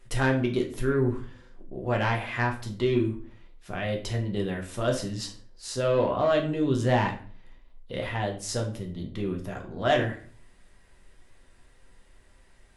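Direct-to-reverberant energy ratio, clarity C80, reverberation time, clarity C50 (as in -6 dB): 0.5 dB, 14.5 dB, 0.45 s, 10.0 dB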